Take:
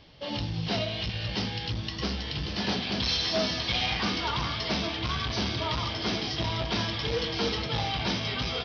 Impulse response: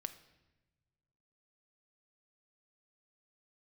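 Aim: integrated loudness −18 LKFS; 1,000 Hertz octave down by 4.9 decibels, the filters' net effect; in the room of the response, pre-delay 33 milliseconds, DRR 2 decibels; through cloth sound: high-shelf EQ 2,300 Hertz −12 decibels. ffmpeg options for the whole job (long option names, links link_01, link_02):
-filter_complex "[0:a]equalizer=frequency=1000:width_type=o:gain=-4,asplit=2[link_01][link_02];[1:a]atrim=start_sample=2205,adelay=33[link_03];[link_02][link_03]afir=irnorm=-1:irlink=0,volume=0.5dB[link_04];[link_01][link_04]amix=inputs=2:normalize=0,highshelf=frequency=2300:gain=-12,volume=13dB"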